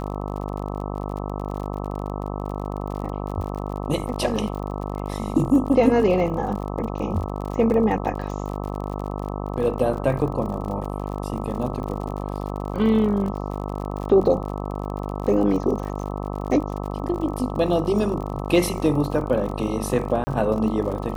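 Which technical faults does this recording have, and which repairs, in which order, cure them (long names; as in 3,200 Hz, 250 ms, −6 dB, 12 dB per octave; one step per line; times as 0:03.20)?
mains buzz 50 Hz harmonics 26 −29 dBFS
surface crackle 52 per second −31 dBFS
0:20.24–0:20.27: drop-out 30 ms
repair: click removal
hum removal 50 Hz, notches 26
repair the gap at 0:20.24, 30 ms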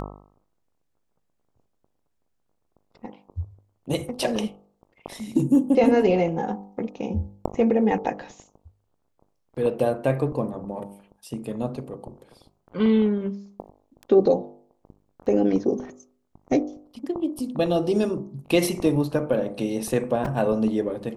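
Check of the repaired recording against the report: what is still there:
none of them is left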